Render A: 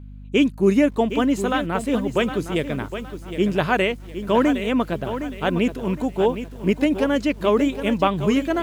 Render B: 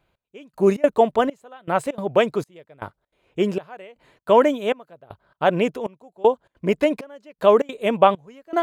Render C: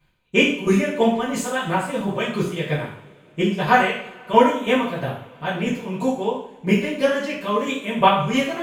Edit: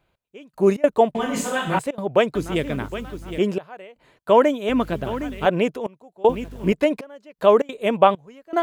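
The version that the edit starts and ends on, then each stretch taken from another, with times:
B
1.15–1.79 s: from C
2.35–3.39 s: from A
4.69–5.46 s: from A
6.29–6.72 s: from A

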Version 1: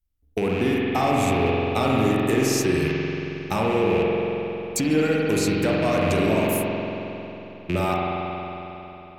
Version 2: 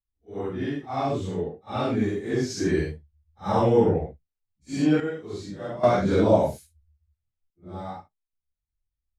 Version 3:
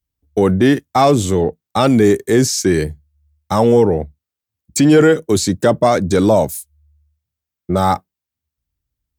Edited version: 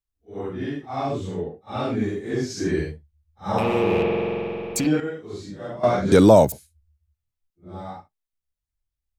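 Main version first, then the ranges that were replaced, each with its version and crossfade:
2
3.58–4.87 s: from 1
6.12–6.52 s: from 3

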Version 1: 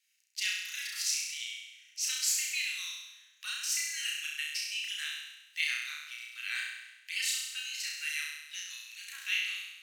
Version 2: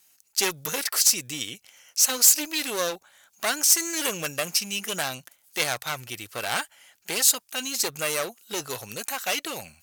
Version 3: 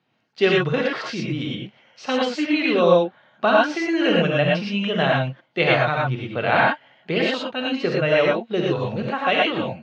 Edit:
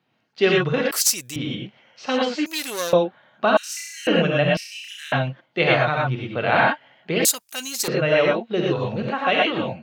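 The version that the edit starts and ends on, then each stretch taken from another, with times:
3
0.91–1.36 s: from 2
2.46–2.93 s: from 2
3.57–4.07 s: from 1
4.57–5.12 s: from 1
7.25–7.88 s: from 2

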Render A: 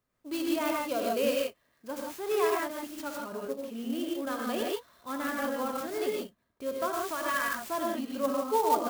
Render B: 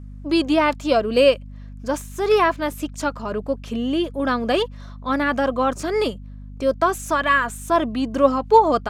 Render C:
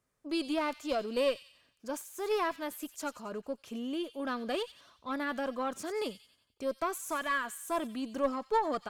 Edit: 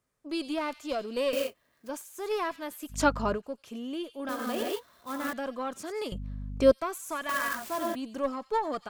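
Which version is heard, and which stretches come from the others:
C
1.33–1.89 s: from A
2.93–3.34 s: from B, crossfade 0.10 s
4.29–5.33 s: from A
6.12–6.72 s: from B
7.29–7.95 s: from A

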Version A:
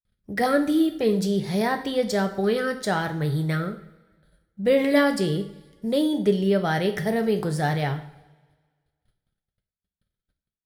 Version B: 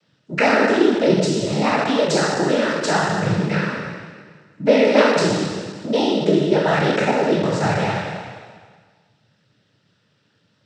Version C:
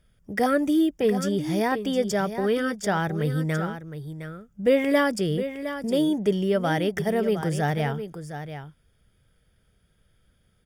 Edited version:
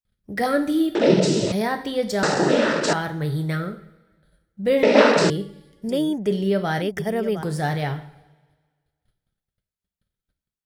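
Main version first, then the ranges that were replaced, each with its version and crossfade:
A
0.95–1.52 s: from B
2.23–2.93 s: from B
4.83–5.30 s: from B
5.89–6.31 s: from C
6.82–7.43 s: from C

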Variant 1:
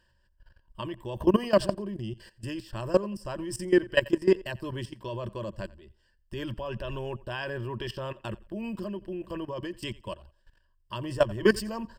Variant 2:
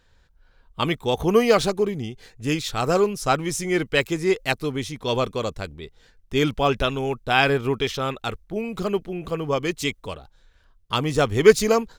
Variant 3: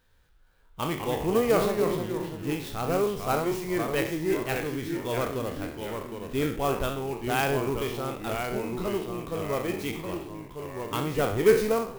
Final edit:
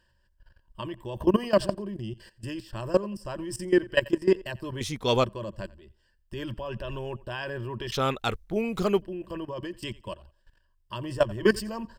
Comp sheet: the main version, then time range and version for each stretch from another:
1
4.81–5.24 s: from 2
7.92–9.02 s: from 2
not used: 3

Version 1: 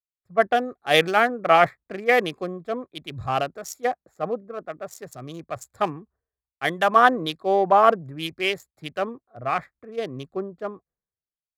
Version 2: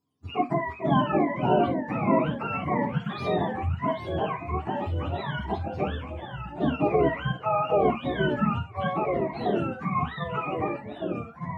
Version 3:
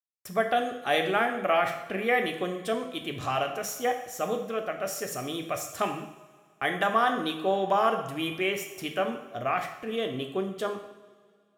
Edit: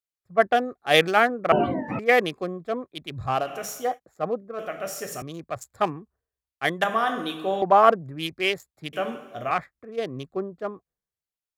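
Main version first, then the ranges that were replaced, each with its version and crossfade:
1
1.52–1.99 s: from 2
3.44–3.88 s: from 3, crossfade 0.24 s
4.59–5.22 s: from 3
6.84–7.62 s: from 3
8.93–9.51 s: from 3

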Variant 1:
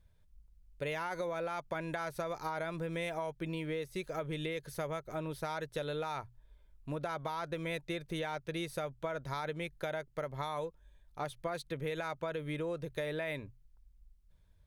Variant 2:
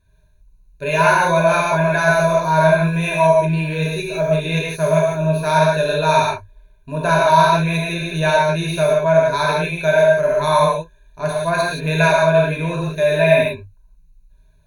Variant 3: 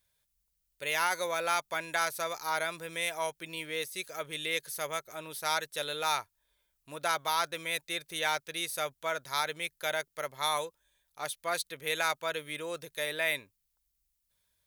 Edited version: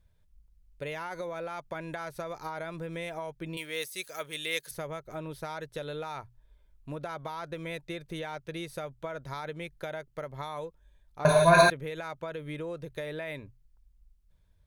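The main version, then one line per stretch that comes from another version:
1
3.57–4.71 s: from 3
11.25–11.70 s: from 2

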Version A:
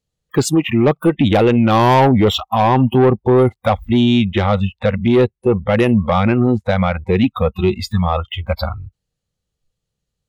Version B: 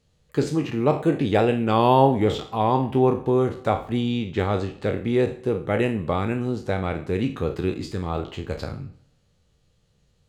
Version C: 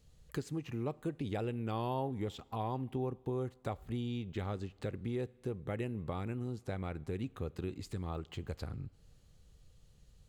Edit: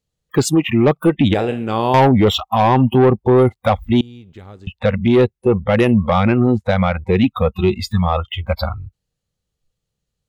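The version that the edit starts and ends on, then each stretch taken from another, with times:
A
1.34–1.94 s: from B
4.01–4.67 s: from C

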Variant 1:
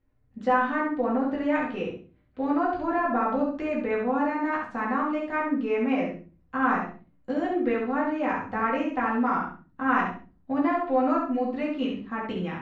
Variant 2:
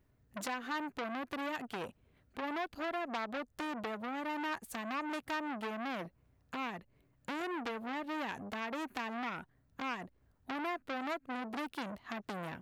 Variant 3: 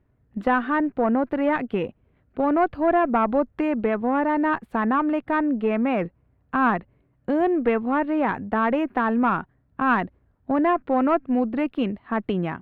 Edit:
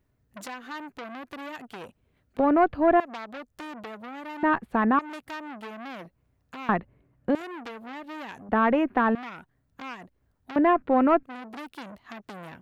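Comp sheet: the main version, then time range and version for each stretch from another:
2
2.39–3.00 s: from 3
4.43–4.99 s: from 3
6.69–7.35 s: from 3
8.49–9.15 s: from 3
10.56–11.23 s: from 3
not used: 1

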